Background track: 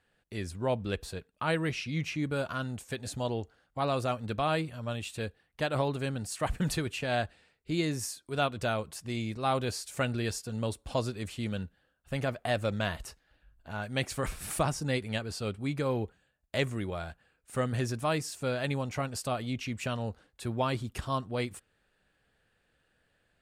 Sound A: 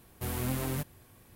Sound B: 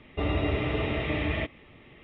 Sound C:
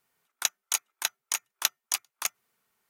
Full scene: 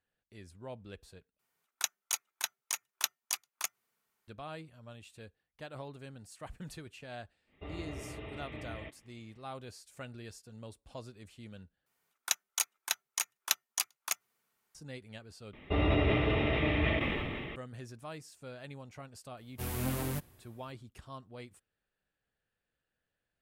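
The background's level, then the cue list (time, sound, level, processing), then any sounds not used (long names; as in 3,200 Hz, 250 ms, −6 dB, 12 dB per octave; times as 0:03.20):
background track −15 dB
0:01.39: overwrite with C −6 dB
0:07.44: mix in B −16 dB, fades 0.10 s
0:11.86: overwrite with C −4 dB
0:15.53: overwrite with B −1.5 dB + level that may fall only so fast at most 23 dB per second
0:19.37: mix in A −2 dB + multiband upward and downward expander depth 40%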